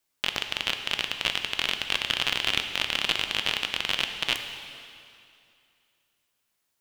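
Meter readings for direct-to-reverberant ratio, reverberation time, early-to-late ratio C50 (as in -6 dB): 6.0 dB, 2.5 s, 7.0 dB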